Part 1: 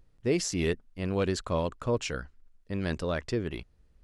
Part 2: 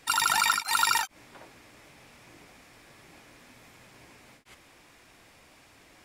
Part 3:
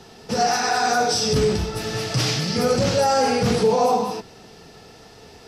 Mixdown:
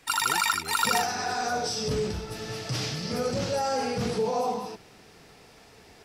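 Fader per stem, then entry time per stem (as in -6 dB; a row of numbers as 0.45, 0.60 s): -15.0, -1.0, -9.0 dB; 0.00, 0.00, 0.55 s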